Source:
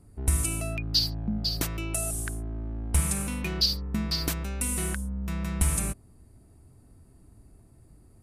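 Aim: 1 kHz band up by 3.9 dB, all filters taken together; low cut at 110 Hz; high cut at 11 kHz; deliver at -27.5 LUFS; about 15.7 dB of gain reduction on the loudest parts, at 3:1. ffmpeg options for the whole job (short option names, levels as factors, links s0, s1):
-af "highpass=110,lowpass=11000,equalizer=f=1000:t=o:g=5,acompressor=threshold=0.00794:ratio=3,volume=5.01"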